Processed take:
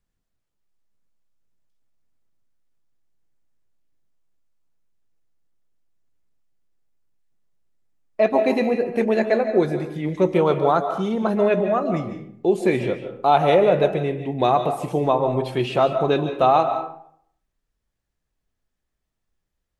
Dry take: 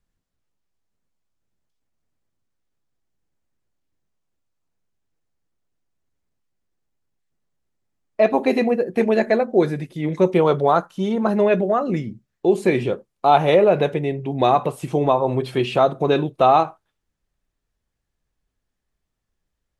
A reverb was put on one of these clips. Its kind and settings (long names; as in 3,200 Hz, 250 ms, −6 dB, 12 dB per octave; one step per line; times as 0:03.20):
comb and all-pass reverb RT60 0.65 s, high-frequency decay 0.6×, pre-delay 105 ms, DRR 8 dB
level −2 dB